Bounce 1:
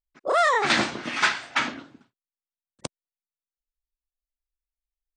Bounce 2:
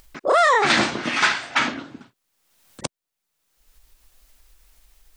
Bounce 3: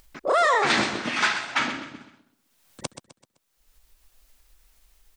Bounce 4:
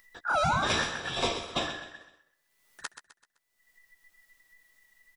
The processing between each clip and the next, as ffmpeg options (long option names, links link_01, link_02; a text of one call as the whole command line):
ffmpeg -i in.wav -filter_complex "[0:a]asplit=2[link_01][link_02];[link_02]acompressor=mode=upward:threshold=-25dB:ratio=2.5,volume=-0.5dB[link_03];[link_01][link_03]amix=inputs=2:normalize=0,alimiter=limit=-8.5dB:level=0:latency=1:release=38" out.wav
ffmpeg -i in.wav -af "aecho=1:1:128|256|384|512:0.282|0.11|0.0429|0.0167,volume=-4dB" out.wav
ffmpeg -i in.wav -filter_complex "[0:a]afftfilt=real='real(if(between(b,1,1012),(2*floor((b-1)/92)+1)*92-b,b),0)':imag='imag(if(between(b,1,1012),(2*floor((b-1)/92)+1)*92-b,b),0)*if(between(b,1,1012),-1,1)':win_size=2048:overlap=0.75,asplit=2[link_01][link_02];[link_02]adelay=13,volume=-10dB[link_03];[link_01][link_03]amix=inputs=2:normalize=0,volume=-6.5dB" out.wav